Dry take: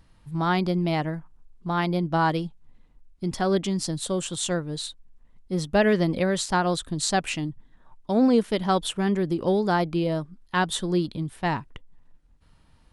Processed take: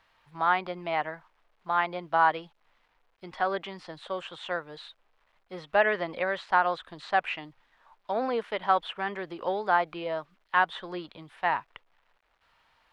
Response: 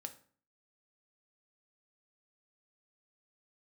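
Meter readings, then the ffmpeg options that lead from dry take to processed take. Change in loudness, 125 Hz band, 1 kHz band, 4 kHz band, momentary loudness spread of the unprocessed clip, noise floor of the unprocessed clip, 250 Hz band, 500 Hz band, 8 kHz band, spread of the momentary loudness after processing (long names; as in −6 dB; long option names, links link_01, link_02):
−3.5 dB, −20.0 dB, +1.5 dB, −8.0 dB, 11 LU, −58 dBFS, −16.5 dB, −5.0 dB, below −30 dB, 16 LU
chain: -filter_complex "[0:a]acrusher=bits=10:mix=0:aa=0.000001,acrossover=split=2900[link_01][link_02];[link_02]acompressor=threshold=-48dB:ratio=4:attack=1:release=60[link_03];[link_01][link_03]amix=inputs=2:normalize=0,acrossover=split=590 3800:gain=0.0631 1 0.0794[link_04][link_05][link_06];[link_04][link_05][link_06]amix=inputs=3:normalize=0,volume=3dB"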